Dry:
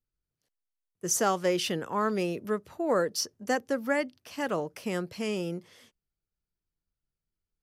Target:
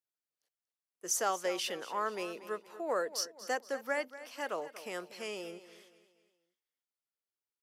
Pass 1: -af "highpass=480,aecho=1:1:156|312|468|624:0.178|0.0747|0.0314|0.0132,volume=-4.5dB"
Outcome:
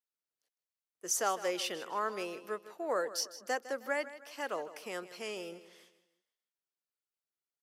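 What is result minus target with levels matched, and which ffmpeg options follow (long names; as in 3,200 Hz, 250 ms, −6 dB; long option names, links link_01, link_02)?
echo 80 ms early
-af "highpass=480,aecho=1:1:236|472|708|944:0.178|0.0747|0.0314|0.0132,volume=-4.5dB"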